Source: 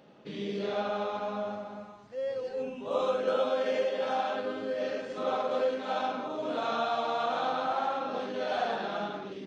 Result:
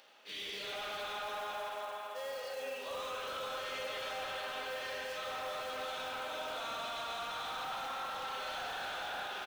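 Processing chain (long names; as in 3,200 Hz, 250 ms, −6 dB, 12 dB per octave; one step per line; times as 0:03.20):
noise gate −41 dBFS, range −20 dB
spring reverb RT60 3.3 s, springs 31/46 ms, chirp 75 ms, DRR 1.5 dB
in parallel at −9 dB: floating-point word with a short mantissa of 2 bits
on the sum: first difference
upward compression, threshold −59 dBFS
mid-hump overdrive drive 22 dB, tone 2,600 Hz, clips at −28 dBFS
brickwall limiter −35.5 dBFS, peak gain reduction 6 dB
on a send: single-tap delay 380 ms −7 dB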